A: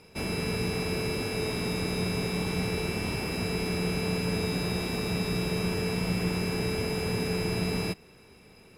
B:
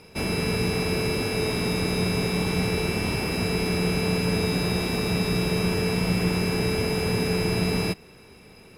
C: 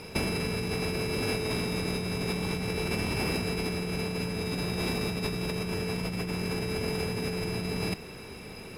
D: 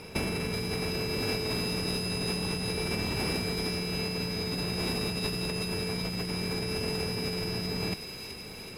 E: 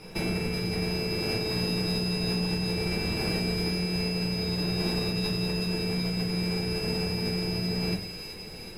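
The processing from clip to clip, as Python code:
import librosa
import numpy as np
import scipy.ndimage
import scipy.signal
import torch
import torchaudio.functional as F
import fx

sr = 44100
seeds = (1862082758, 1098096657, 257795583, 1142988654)

y1 = fx.notch(x, sr, hz=7400.0, q=19.0)
y1 = F.gain(torch.from_numpy(y1), 5.0).numpy()
y2 = fx.over_compress(y1, sr, threshold_db=-31.0, ratio=-1.0)
y3 = fx.echo_wet_highpass(y2, sr, ms=377, feedback_pct=66, hz=3000.0, wet_db=-3.5)
y3 = F.gain(torch.from_numpy(y3), -1.5).numpy()
y4 = fx.room_shoebox(y3, sr, seeds[0], volume_m3=41.0, walls='mixed', distance_m=0.81)
y4 = F.gain(torch.from_numpy(y4), -5.0).numpy()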